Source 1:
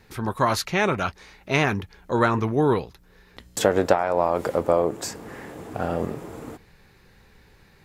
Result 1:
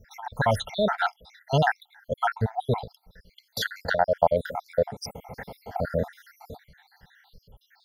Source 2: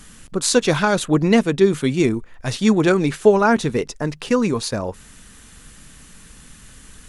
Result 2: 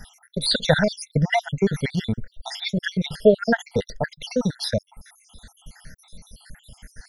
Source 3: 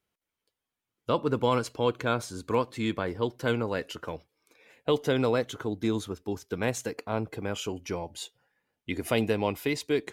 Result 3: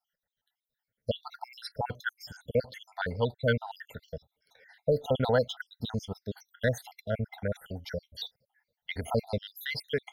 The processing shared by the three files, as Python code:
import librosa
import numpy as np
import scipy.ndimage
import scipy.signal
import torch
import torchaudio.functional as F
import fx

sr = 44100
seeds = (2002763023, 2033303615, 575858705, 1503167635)

y = fx.spec_dropout(x, sr, seeds[0], share_pct=69)
y = fx.fixed_phaser(y, sr, hz=1700.0, stages=8)
y = y * librosa.db_to_amplitude(6.0)